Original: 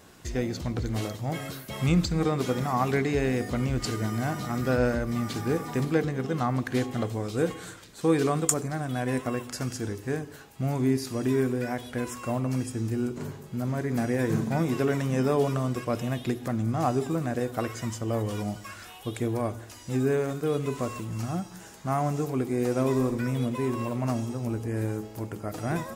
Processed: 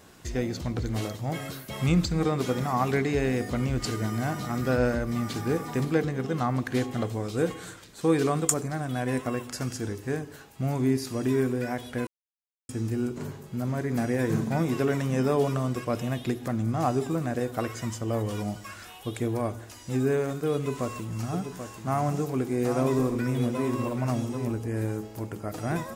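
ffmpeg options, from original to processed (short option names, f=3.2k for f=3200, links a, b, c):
-filter_complex "[0:a]asettb=1/sr,asplit=3[a][b][c];[a]atrim=end=20.544[d];[b]atrim=start=20.54:end=24.52,asetpts=PTS-STARTPTS,afade=t=in:d=0.004:c=qsin,afade=t=out:st=3.976:d=0.004:c=qsin,aecho=1:1:785:0.376,atrim=end_sample=175518[e];[c]atrim=start=24.516[f];[d][e]acrossfade=d=0.004:c1=hsin:c2=qsin[g];[g][f]acrossfade=d=0.004:c1=qsin:c2=hsin,asplit=3[h][i][j];[h]atrim=end=12.07,asetpts=PTS-STARTPTS,afade=t=out:st=12.066:d=0.004:c=hsin[k];[i]atrim=start=12.07:end=12.69,asetpts=PTS-STARTPTS,volume=0[l];[j]atrim=start=12.69,asetpts=PTS-STARTPTS,afade=t=in:d=0.004:c=hsin[m];[k][l][m]concat=n=3:v=0:a=1"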